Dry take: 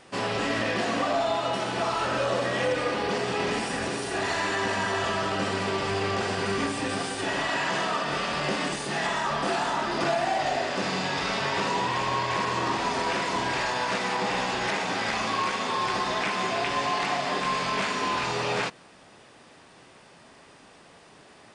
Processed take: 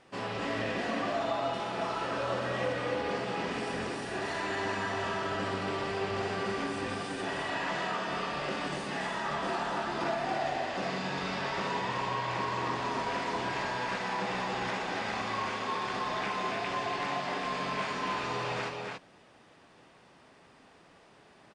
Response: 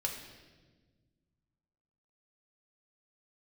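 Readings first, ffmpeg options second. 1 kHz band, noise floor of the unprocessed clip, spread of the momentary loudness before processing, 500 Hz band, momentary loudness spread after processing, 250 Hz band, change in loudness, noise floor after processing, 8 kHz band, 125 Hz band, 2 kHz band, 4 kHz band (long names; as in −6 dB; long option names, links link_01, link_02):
−5.5 dB, −53 dBFS, 2 LU, −5.5 dB, 2 LU, −5.5 dB, −6.0 dB, −59 dBFS, −11.0 dB, −5.0 dB, −6.0 dB, −8.0 dB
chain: -filter_complex "[0:a]highshelf=frequency=5400:gain=-9,asplit=2[link_01][link_02];[link_02]aecho=0:1:64.14|282.8:0.251|0.631[link_03];[link_01][link_03]amix=inputs=2:normalize=0,volume=-7dB"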